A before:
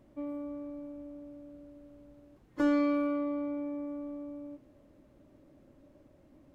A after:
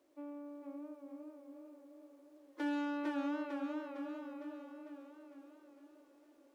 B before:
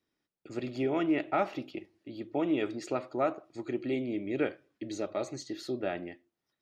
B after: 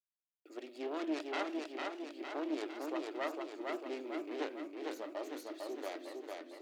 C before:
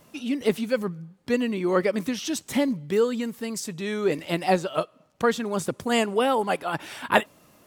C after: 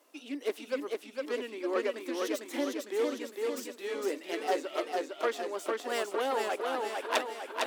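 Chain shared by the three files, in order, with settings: self-modulated delay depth 0.34 ms; elliptic high-pass 290 Hz, stop band 50 dB; bit-crush 12-bit; warbling echo 0.454 s, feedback 56%, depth 87 cents, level -3 dB; gain -8 dB

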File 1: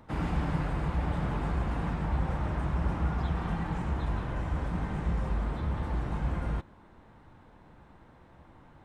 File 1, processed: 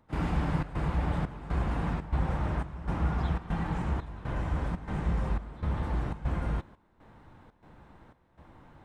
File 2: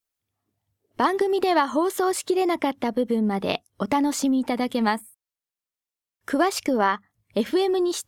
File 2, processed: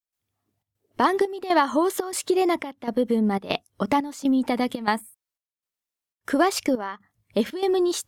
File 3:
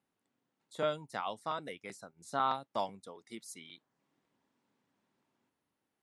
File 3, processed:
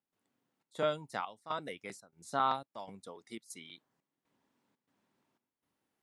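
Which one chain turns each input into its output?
step gate ".xxxx.xxxx." 120 bpm -12 dB; gain +1 dB

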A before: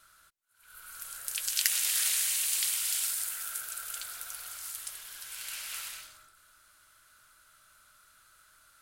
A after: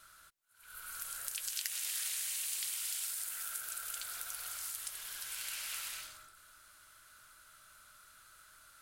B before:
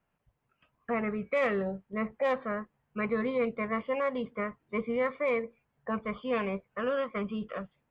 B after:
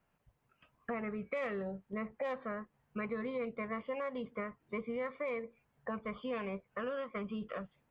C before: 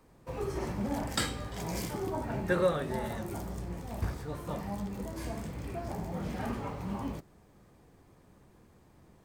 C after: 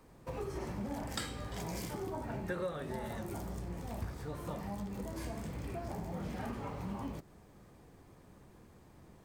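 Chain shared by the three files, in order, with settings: compressor 3:1, threshold -40 dBFS; gain +1.5 dB

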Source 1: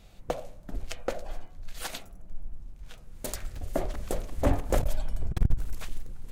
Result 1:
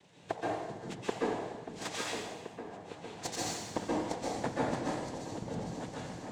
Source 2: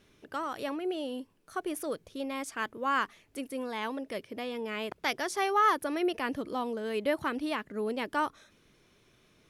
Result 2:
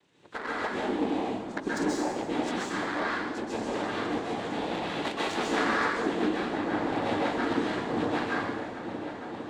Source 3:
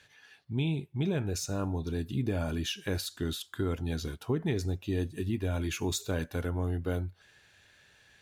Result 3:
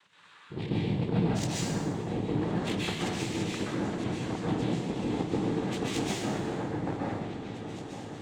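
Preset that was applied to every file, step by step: nonlinear frequency compression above 1800 Hz 1.5:1; compressor 4:1, threshold -35 dBFS; noise vocoder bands 6; added harmonics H 3 -28 dB, 7 -24 dB, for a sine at -21.5 dBFS; repeats that get brighter 0.456 s, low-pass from 200 Hz, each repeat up 2 oct, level -6 dB; plate-style reverb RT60 1.1 s, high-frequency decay 1×, pre-delay 0.115 s, DRR -5.5 dB; gain +5 dB

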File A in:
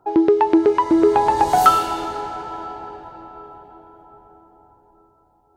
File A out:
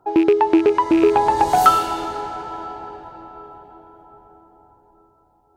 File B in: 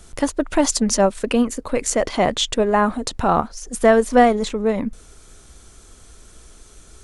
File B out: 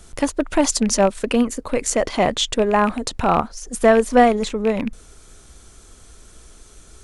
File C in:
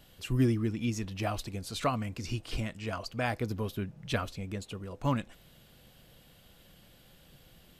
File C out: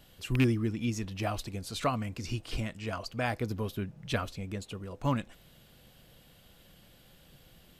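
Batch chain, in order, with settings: rattling part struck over -24 dBFS, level -19 dBFS

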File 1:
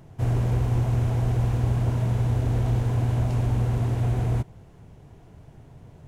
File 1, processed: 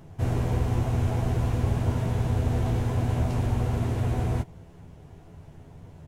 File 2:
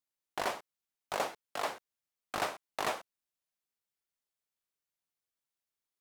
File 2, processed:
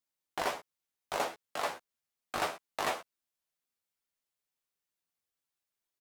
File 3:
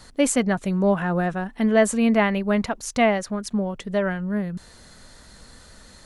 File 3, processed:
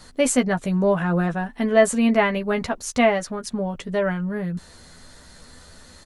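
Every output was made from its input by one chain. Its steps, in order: doubler 12 ms -5.5 dB

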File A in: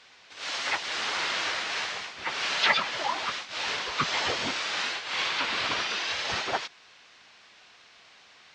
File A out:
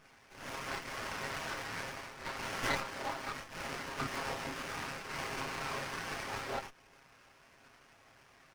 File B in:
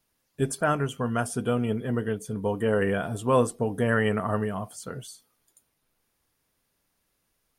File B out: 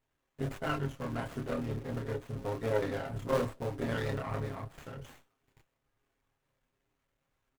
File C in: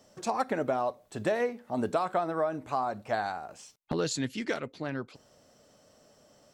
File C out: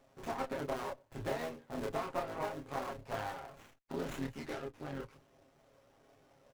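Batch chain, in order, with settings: cycle switcher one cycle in 3, muted; comb 7.4 ms, depth 62%; in parallel at -2 dB: compressor, threshold -39 dBFS; on the sum: chorus voices 6, 0.34 Hz, delay 28 ms, depth 1.9 ms; running maximum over 9 samples; gain -6.5 dB

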